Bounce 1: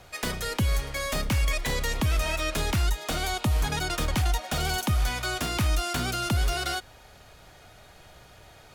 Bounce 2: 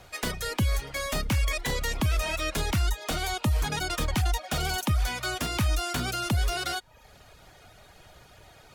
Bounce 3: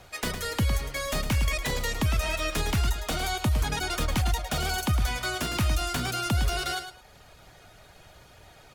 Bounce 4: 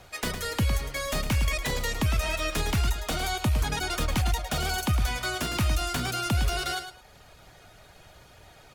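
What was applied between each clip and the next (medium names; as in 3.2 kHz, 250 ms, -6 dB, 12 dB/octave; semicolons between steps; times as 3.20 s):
reverb removal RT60 0.56 s
feedback delay 108 ms, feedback 21%, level -9 dB
rattle on loud lows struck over -25 dBFS, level -33 dBFS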